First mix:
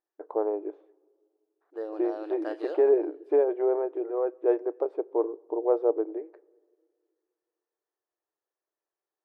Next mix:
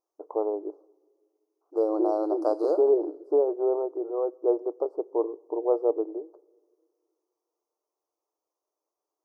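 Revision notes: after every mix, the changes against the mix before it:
second voice +10.5 dB; master: add inverse Chebyshev band-stop 1700–3500 Hz, stop band 40 dB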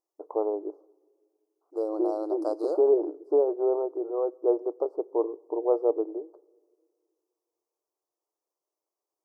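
second voice: send -10.0 dB

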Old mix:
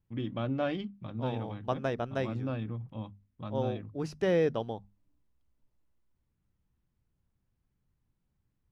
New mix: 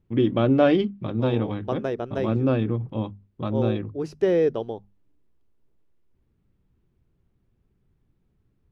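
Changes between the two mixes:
first voice +10.0 dB; master: add bell 390 Hz +10 dB 0.78 oct

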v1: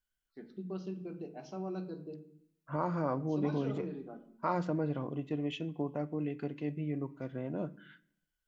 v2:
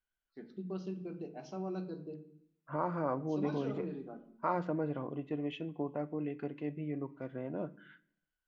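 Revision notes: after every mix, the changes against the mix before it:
second voice: add tone controls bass -5 dB, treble -15 dB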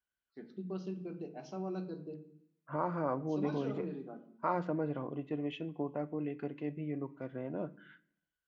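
master: add HPF 57 Hz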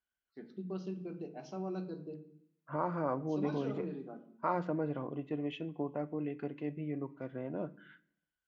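none

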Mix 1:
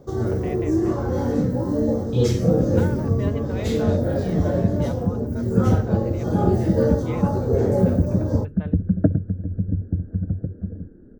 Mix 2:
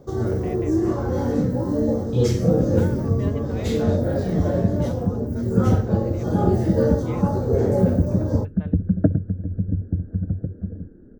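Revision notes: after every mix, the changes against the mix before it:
speech -3.5 dB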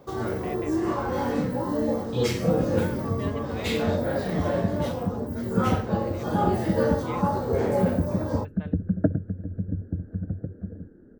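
first sound: add fifteen-band EQ 100 Hz -5 dB, 400 Hz -3 dB, 1000 Hz +6 dB, 2500 Hz +8 dB, 6300 Hz -8 dB, 16000 Hz -6 dB; master: add tilt +2 dB/oct

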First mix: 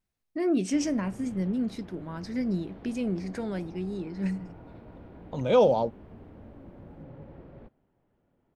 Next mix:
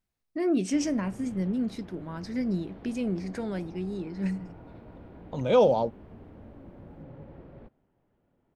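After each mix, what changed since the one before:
none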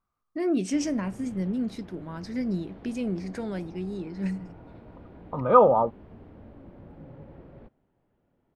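second voice: add synth low-pass 1200 Hz, resonance Q 14

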